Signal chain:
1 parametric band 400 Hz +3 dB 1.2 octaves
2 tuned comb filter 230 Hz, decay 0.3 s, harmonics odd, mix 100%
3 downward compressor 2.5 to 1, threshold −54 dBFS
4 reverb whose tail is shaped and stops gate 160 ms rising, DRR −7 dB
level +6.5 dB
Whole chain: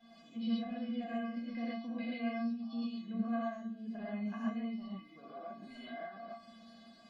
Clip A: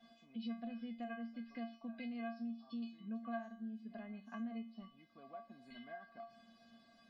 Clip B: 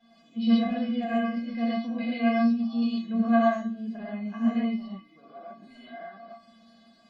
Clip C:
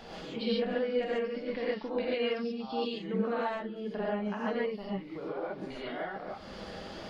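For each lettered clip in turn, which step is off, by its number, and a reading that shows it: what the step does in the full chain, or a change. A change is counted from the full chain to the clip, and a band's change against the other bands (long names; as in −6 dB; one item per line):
4, 2 kHz band +2.0 dB
3, average gain reduction 8.0 dB
2, 250 Hz band −9.5 dB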